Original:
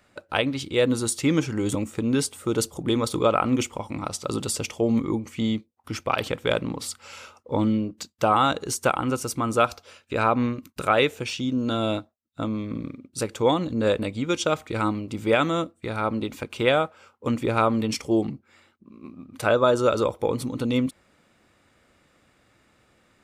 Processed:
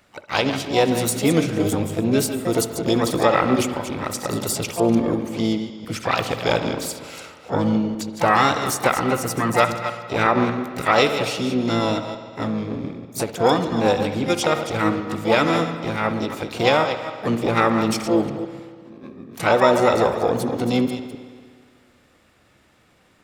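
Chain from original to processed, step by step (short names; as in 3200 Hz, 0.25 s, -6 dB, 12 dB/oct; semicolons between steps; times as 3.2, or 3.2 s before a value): reverse delay 0.15 s, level -9.5 dB; spring tank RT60 1.9 s, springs 60 ms, chirp 25 ms, DRR 9 dB; harmoniser +7 st -6 dB, +12 st -17 dB; gain +2 dB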